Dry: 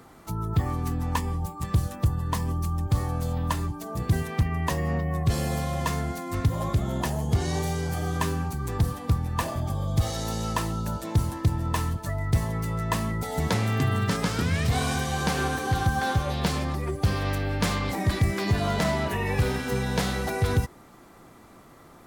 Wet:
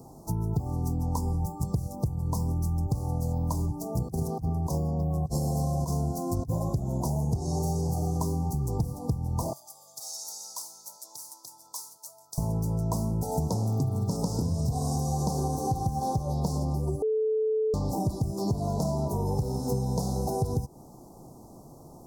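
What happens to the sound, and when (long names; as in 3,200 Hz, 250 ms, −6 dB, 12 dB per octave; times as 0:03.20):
0:03.97–0:06.59: compressor whose output falls as the input rises −28 dBFS, ratio −0.5
0:09.53–0:12.38: Chebyshev high-pass filter 2,300 Hz
0:17.02–0:17.74: beep over 436 Hz −22.5 dBFS
whole clip: elliptic band-stop filter 880–5,300 Hz, stop band 60 dB; parametric band 140 Hz +5.5 dB 0.36 octaves; downward compressor 10 to 1, threshold −27 dBFS; level +3 dB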